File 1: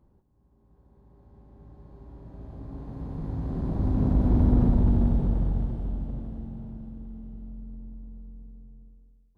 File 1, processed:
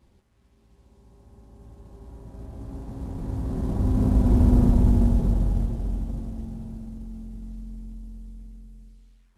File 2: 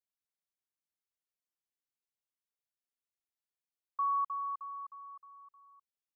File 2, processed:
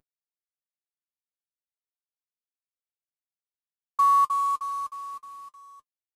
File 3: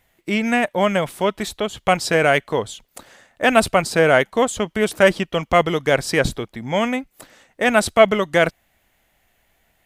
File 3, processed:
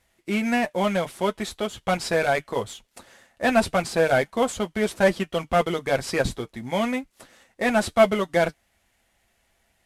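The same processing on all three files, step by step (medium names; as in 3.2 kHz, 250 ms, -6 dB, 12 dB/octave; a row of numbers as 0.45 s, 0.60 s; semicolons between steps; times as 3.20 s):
CVSD coder 64 kbps; comb of notches 150 Hz; normalise loudness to -24 LUFS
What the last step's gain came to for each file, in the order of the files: +3.0 dB, +12.0 dB, -3.0 dB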